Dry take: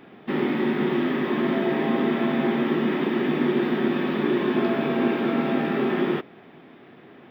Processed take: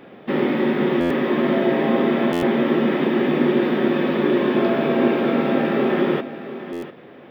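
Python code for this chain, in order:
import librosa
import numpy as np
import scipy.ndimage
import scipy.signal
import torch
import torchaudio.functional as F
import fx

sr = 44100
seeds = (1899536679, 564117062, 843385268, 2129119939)

p1 = fx.peak_eq(x, sr, hz=540.0, db=9.0, octaves=0.35)
p2 = p1 + fx.echo_single(p1, sr, ms=696, db=-13.0, dry=0)
p3 = fx.buffer_glitch(p2, sr, at_s=(1.0, 2.32, 6.72), block=512, repeats=8)
y = F.gain(torch.from_numpy(p3), 3.0).numpy()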